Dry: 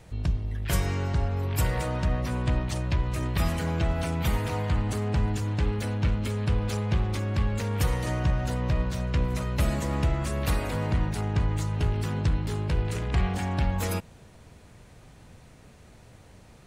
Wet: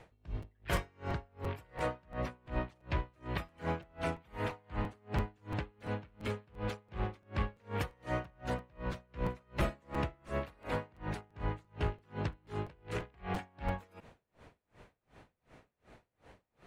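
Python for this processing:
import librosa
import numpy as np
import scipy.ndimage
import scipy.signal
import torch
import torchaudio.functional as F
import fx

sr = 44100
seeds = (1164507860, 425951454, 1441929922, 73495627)

y = fx.bass_treble(x, sr, bass_db=-9, treble_db=-14)
y = fx.buffer_crackle(y, sr, first_s=0.42, period_s=0.34, block=256, kind='repeat')
y = y * 10.0 ** (-34 * (0.5 - 0.5 * np.cos(2.0 * np.pi * 2.7 * np.arange(len(y)) / sr)) / 20.0)
y = y * 10.0 ** (1.0 / 20.0)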